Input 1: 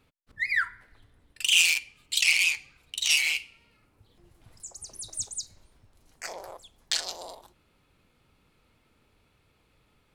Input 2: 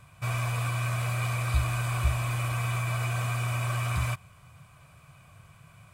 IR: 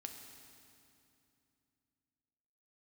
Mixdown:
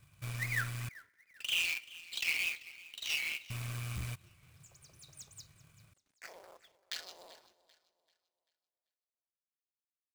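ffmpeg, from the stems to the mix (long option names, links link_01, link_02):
-filter_complex "[0:a]agate=range=-9dB:threshold=-58dB:ratio=16:detection=peak,acrusher=bits=9:mix=0:aa=0.000001,bandpass=frequency=1000:width_type=q:width=0.73:csg=0,volume=-4.5dB,asplit=3[link_01][link_02][link_03];[link_02]volume=-17dB[link_04];[link_03]volume=-18dB[link_05];[1:a]aeval=exprs='clip(val(0),-1,0.0299)':channel_layout=same,volume=-9dB,asplit=3[link_06][link_07][link_08];[link_06]atrim=end=0.89,asetpts=PTS-STARTPTS,afade=type=out:start_time=0.886:duration=0.004:curve=hsin[link_09];[link_07]atrim=start=0.89:end=3.5,asetpts=PTS-STARTPTS,volume=0[link_10];[link_08]atrim=start=3.5,asetpts=PTS-STARTPTS,afade=type=in:duration=0.004:curve=hsin[link_11];[link_09][link_10][link_11]concat=n=3:v=0:a=1[link_12];[2:a]atrim=start_sample=2205[link_13];[link_04][link_13]afir=irnorm=-1:irlink=0[link_14];[link_05]aecho=0:1:389|778|1167|1556|1945:1|0.35|0.122|0.0429|0.015[link_15];[link_01][link_12][link_14][link_15]amix=inputs=4:normalize=0,equalizer=frequency=840:width_type=o:width=1.4:gain=-12,acrusher=bits=2:mode=log:mix=0:aa=0.000001"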